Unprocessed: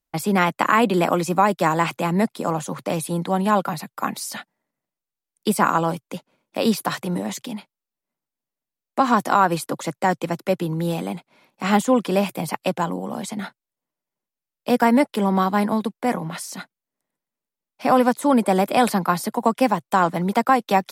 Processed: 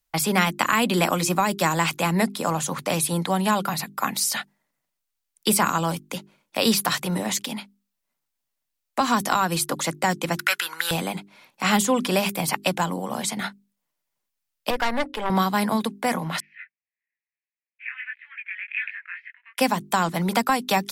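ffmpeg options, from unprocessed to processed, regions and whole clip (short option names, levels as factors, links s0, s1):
-filter_complex "[0:a]asettb=1/sr,asplit=3[s0][s1][s2];[s0]atrim=end=10.374[s3];[s1]atrim=start=10.37:end=10.91,asetpts=PTS-STARTPTS,afade=t=in:d=0.004:c=qsin,afade=t=out:st=0.536:d=0.004:c=qsin,acontrast=38,highpass=f=1500:t=q:w=5.8[s4];[s2]atrim=start=10.906[s5];[s3][s4]acrossfade=d=0.004:c1=hsin:c2=qsin[s6];[s6][s5]acrossfade=d=0.004:c1=qsin:c2=hsin,asettb=1/sr,asplit=3[s7][s8][s9];[s7]atrim=end=14.704[s10];[s8]atrim=start=14.7:end=15.3,asetpts=PTS-STARTPTS,afade=t=in:d=0.004:c=qsin,afade=t=out:st=0.596:d=0.004:c=qsin,bass=f=250:g=-14,treble=f=4000:g=-14,bandreject=f=136.3:t=h:w=4,bandreject=f=272.6:t=h:w=4,bandreject=f=408.9:t=h:w=4,bandreject=f=545.2:t=h:w=4,aeval=exprs='(tanh(7.94*val(0)+0.55)-tanh(0.55))/7.94':c=same[s11];[s9]atrim=start=15.296[s12];[s10][s11]acrossfade=d=0.004:c1=hsin:c2=qsin[s13];[s13][s12]acrossfade=d=0.004:c1=qsin:c2=hsin,asettb=1/sr,asplit=3[s14][s15][s16];[s14]atrim=end=16.404[s17];[s15]atrim=start=16.4:end=19.58,asetpts=PTS-STARTPTS,afade=t=in:d=0.004:c=qsin,afade=t=out:st=3.176:d=0.004:c=qsin,asuperpass=centerf=2100:order=8:qfactor=2.1,flanger=delay=19.5:depth=3.5:speed=1.6[s18];[s16]atrim=start=19.576[s19];[s17][s18]acrossfade=d=0.004:c1=hsin:c2=qsin[s20];[s20][s19]acrossfade=d=0.004:c1=qsin:c2=hsin,equalizer=f=310:w=0.38:g=-9.5,bandreject=f=50:t=h:w=6,bandreject=f=100:t=h:w=6,bandreject=f=150:t=h:w=6,bandreject=f=200:t=h:w=6,bandreject=f=250:t=h:w=6,bandreject=f=300:t=h:w=6,bandreject=f=350:t=h:w=6,bandreject=f=400:t=h:w=6,acrossover=split=330|3000[s21][s22][s23];[s22]acompressor=threshold=0.0355:ratio=3[s24];[s21][s24][s23]amix=inputs=3:normalize=0,volume=2.37"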